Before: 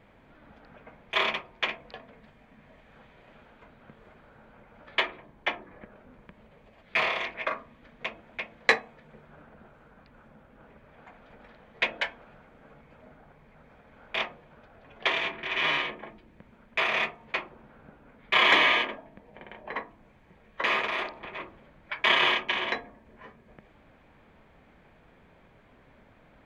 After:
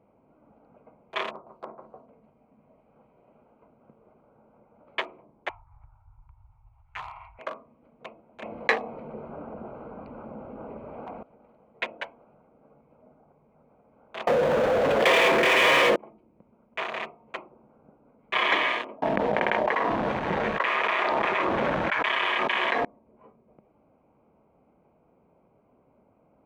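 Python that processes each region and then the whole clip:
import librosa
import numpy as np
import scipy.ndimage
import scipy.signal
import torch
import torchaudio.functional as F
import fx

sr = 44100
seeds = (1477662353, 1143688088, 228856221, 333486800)

y = fx.chain(x, sr, fx.steep_lowpass(hz=1600.0, slope=48),
    fx.echo_crushed(ms=152, feedback_pct=35, bits=9, wet_db=-7.0), at=(1.31, 2.07))
y = fx.chain(y, sr, fx.cheby2_bandstop(low_hz=180.0, high_hz=550.0, order=4, stop_db=40),
    fx.tilt_eq(slope=-4.5),
    fx.comb(ms=2.2, depth=0.33), at=(5.49, 7.39))
y = fx.chain(y, sr, fx.peak_eq(hz=150.0, db=-5.0, octaves=0.4),
    fx.env_flatten(amount_pct=50), at=(8.42, 11.23))
y = fx.chain(y, sr, fx.peak_eq(hz=510.0, db=14.5, octaves=0.31),
    fx.power_curve(exponent=0.5),
    fx.env_flatten(amount_pct=70), at=(14.27, 15.96))
y = fx.chain(y, sr, fx.lowpass(hz=3400.0, slope=12),
    fx.low_shelf(hz=500.0, db=-8.5),
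    fx.env_flatten(amount_pct=100), at=(19.02, 22.85))
y = fx.wiener(y, sr, points=25)
y = fx.highpass(y, sr, hz=260.0, slope=6)
y = fx.high_shelf(y, sr, hz=3600.0, db=-9.5)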